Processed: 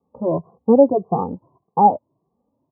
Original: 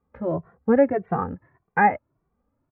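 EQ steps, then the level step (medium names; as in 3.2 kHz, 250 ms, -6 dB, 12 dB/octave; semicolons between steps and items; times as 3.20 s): high-pass 150 Hz 12 dB/octave; steep low-pass 1.1 kHz 96 dB/octave; +5.5 dB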